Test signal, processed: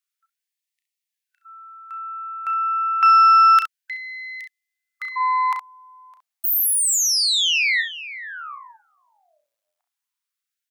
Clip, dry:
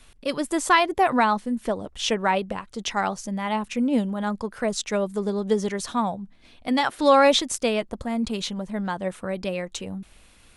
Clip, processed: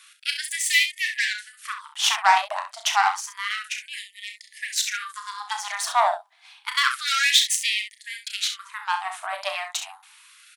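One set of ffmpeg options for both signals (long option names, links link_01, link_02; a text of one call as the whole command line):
ffmpeg -i in.wav -af "aeval=exprs='0.501*(cos(1*acos(clip(val(0)/0.501,-1,1)))-cos(1*PI/2))+0.0447*(cos(8*acos(clip(val(0)/0.501,-1,1)))-cos(8*PI/2))':channel_layout=same,aecho=1:1:34|66:0.398|0.335,afftfilt=real='re*gte(b*sr/1024,590*pow(1800/590,0.5+0.5*sin(2*PI*0.29*pts/sr)))':imag='im*gte(b*sr/1024,590*pow(1800/590,0.5+0.5*sin(2*PI*0.29*pts/sr)))':win_size=1024:overlap=0.75,volume=5dB" out.wav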